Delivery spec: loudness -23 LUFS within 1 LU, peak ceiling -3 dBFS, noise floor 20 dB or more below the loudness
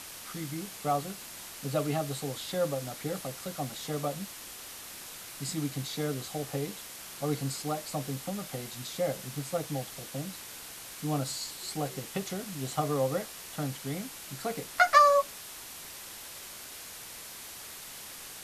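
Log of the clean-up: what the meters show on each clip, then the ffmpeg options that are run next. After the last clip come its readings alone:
noise floor -45 dBFS; noise floor target -53 dBFS; loudness -33.0 LUFS; peak -9.0 dBFS; loudness target -23.0 LUFS
-> -af "afftdn=nr=8:nf=-45"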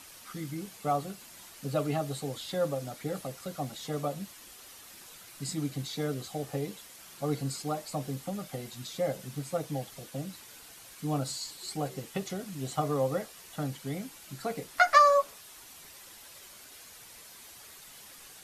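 noise floor -51 dBFS; noise floor target -53 dBFS
-> -af "afftdn=nr=6:nf=-51"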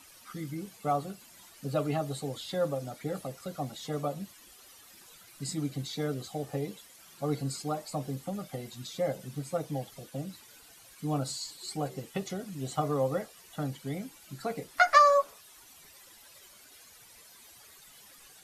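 noise floor -55 dBFS; loudness -32.5 LUFS; peak -9.0 dBFS; loudness target -23.0 LUFS
-> -af "volume=9.5dB,alimiter=limit=-3dB:level=0:latency=1"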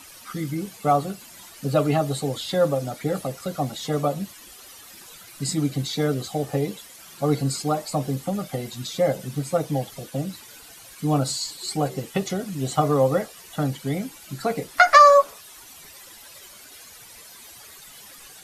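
loudness -23.5 LUFS; peak -3.0 dBFS; noise floor -46 dBFS

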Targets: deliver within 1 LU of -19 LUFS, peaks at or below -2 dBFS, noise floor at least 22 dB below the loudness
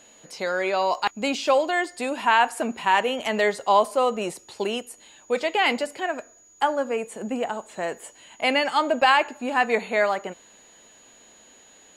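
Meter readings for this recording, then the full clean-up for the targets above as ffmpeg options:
steady tone 6800 Hz; tone level -52 dBFS; loudness -23.5 LUFS; peak -7.0 dBFS; loudness target -19.0 LUFS
-> -af "bandreject=f=6.8k:w=30"
-af "volume=4.5dB"

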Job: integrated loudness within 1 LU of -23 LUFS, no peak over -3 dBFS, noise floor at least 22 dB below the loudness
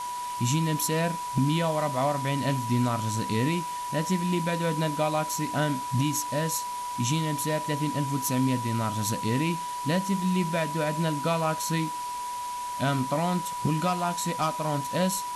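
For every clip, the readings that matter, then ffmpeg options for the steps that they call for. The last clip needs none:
steady tone 980 Hz; tone level -31 dBFS; noise floor -34 dBFS; noise floor target -50 dBFS; loudness -27.5 LUFS; peak -14.5 dBFS; loudness target -23.0 LUFS
-> -af "bandreject=f=980:w=30"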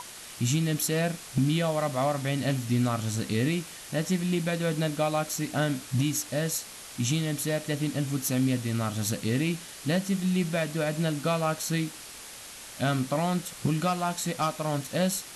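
steady tone none; noise floor -44 dBFS; noise floor target -51 dBFS
-> -af "afftdn=nr=7:nf=-44"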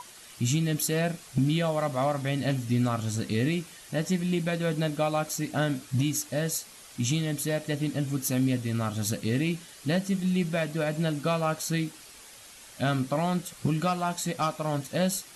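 noise floor -49 dBFS; noise floor target -51 dBFS
-> -af "afftdn=nr=6:nf=-49"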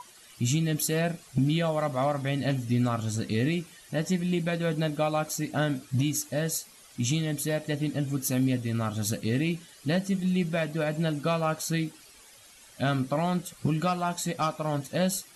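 noise floor -53 dBFS; loudness -28.5 LUFS; peak -15.5 dBFS; loudness target -23.0 LUFS
-> -af "volume=5.5dB"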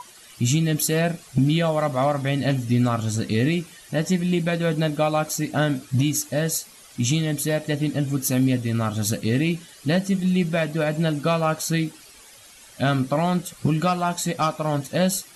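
loudness -23.0 LUFS; peak -10.0 dBFS; noise floor -48 dBFS

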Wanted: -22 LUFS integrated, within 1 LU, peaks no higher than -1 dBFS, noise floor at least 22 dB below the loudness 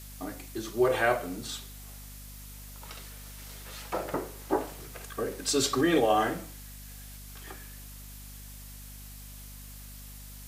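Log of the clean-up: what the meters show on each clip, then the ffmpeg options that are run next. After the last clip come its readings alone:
hum 50 Hz; harmonics up to 250 Hz; hum level -44 dBFS; noise floor -45 dBFS; noise floor target -52 dBFS; loudness -29.5 LUFS; peak -12.0 dBFS; loudness target -22.0 LUFS
-> -af "bandreject=f=50:t=h:w=4,bandreject=f=100:t=h:w=4,bandreject=f=150:t=h:w=4,bandreject=f=200:t=h:w=4,bandreject=f=250:t=h:w=4"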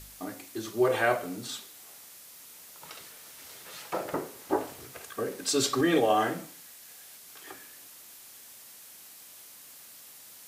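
hum none; noise floor -50 dBFS; noise floor target -52 dBFS
-> -af "afftdn=nr=6:nf=-50"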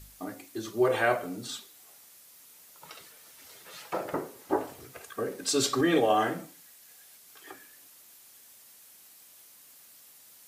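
noise floor -55 dBFS; loudness -29.5 LUFS; peak -12.5 dBFS; loudness target -22.0 LUFS
-> -af "volume=7.5dB"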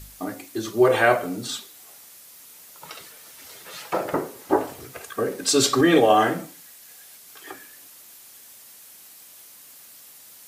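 loudness -22.0 LUFS; peak -5.0 dBFS; noise floor -48 dBFS

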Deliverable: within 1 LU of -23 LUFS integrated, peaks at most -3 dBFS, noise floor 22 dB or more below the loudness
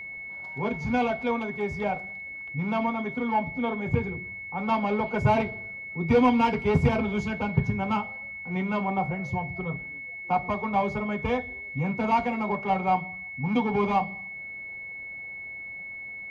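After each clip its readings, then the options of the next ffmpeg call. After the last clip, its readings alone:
steady tone 2200 Hz; tone level -36 dBFS; loudness -28.0 LUFS; peak -11.0 dBFS; loudness target -23.0 LUFS
-> -af "bandreject=f=2.2k:w=30"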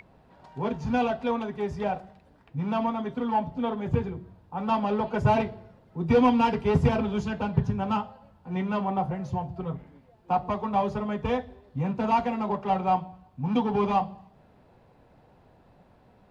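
steady tone none; loudness -27.5 LUFS; peak -11.0 dBFS; loudness target -23.0 LUFS
-> -af "volume=4.5dB"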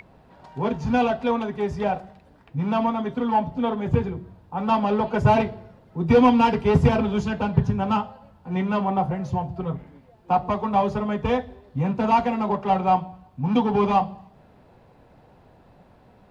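loudness -23.0 LUFS; peak -6.5 dBFS; noise floor -54 dBFS

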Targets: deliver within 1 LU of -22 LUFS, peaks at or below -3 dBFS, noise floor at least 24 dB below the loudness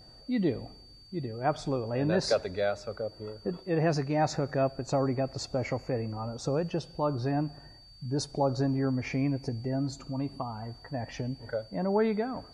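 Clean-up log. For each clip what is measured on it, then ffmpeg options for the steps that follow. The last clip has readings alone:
steady tone 4600 Hz; tone level -53 dBFS; loudness -31.5 LUFS; peak -14.0 dBFS; loudness target -22.0 LUFS
-> -af "bandreject=f=4.6k:w=30"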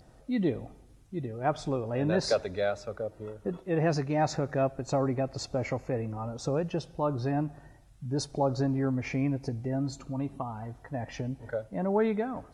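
steady tone none; loudness -31.5 LUFS; peak -14.5 dBFS; loudness target -22.0 LUFS
-> -af "volume=9.5dB"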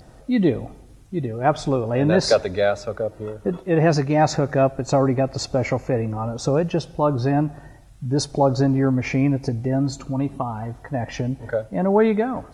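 loudness -22.0 LUFS; peak -5.0 dBFS; noise floor -47 dBFS

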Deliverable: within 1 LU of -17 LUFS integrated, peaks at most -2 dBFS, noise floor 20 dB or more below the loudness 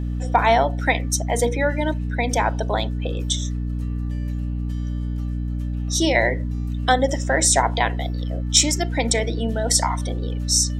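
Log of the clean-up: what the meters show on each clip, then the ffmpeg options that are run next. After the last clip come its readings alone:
hum 60 Hz; harmonics up to 300 Hz; hum level -23 dBFS; loudness -21.5 LUFS; peak -2.5 dBFS; loudness target -17.0 LUFS
-> -af "bandreject=f=60:t=h:w=4,bandreject=f=120:t=h:w=4,bandreject=f=180:t=h:w=4,bandreject=f=240:t=h:w=4,bandreject=f=300:t=h:w=4"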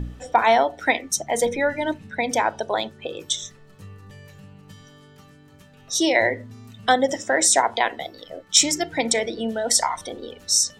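hum none; loudness -21.5 LUFS; peak -3.0 dBFS; loudness target -17.0 LUFS
-> -af "volume=4.5dB,alimiter=limit=-2dB:level=0:latency=1"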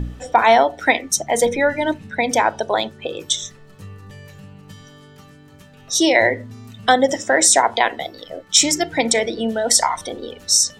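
loudness -17.5 LUFS; peak -2.0 dBFS; noise floor -46 dBFS

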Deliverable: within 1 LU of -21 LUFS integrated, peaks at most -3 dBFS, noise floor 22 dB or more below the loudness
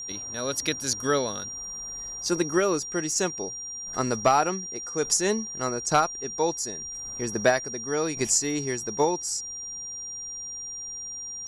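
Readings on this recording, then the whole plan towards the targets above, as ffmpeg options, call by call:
steady tone 5700 Hz; tone level -34 dBFS; loudness -27.0 LUFS; peak -10.0 dBFS; loudness target -21.0 LUFS
-> -af "bandreject=f=5.7k:w=30"
-af "volume=6dB"

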